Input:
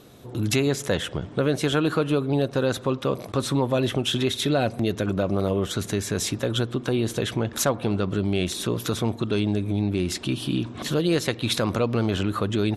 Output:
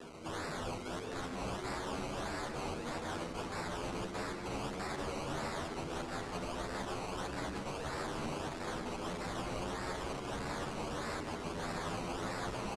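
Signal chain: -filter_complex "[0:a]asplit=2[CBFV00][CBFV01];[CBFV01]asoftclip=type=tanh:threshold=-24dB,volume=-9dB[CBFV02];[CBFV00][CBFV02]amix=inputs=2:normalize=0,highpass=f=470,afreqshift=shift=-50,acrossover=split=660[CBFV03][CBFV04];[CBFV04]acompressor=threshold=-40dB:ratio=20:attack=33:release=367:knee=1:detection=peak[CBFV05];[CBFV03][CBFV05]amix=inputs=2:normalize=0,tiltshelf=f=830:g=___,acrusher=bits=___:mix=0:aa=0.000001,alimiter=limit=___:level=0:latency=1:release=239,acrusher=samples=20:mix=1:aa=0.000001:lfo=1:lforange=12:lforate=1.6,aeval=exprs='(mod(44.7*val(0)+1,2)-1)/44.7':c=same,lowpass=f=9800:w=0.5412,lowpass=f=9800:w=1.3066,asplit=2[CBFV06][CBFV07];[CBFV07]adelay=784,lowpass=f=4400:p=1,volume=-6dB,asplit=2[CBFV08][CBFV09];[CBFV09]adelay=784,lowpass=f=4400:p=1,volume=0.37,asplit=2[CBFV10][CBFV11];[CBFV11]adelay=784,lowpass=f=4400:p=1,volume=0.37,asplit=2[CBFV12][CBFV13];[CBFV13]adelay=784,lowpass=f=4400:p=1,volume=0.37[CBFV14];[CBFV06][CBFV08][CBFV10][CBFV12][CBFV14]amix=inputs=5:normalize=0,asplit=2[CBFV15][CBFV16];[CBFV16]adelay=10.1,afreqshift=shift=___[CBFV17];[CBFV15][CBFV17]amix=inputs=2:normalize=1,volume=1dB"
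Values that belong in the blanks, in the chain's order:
9.5, 7, -16dB, 0.36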